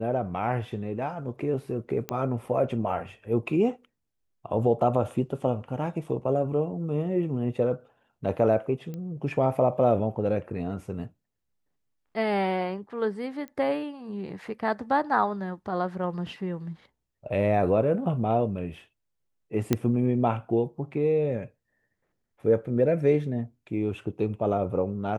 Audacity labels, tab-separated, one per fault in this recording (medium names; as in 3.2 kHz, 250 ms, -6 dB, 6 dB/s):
2.090000	2.090000	pop -15 dBFS
8.940000	8.940000	pop -25 dBFS
13.480000	13.480000	pop -27 dBFS
19.730000	19.730000	pop -9 dBFS